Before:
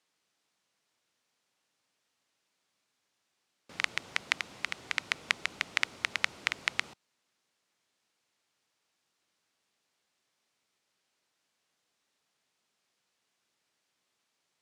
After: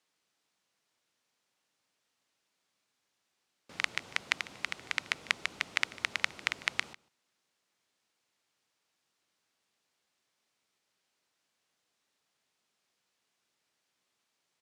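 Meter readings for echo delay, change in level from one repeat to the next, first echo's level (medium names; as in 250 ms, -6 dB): 149 ms, no regular repeats, -21.0 dB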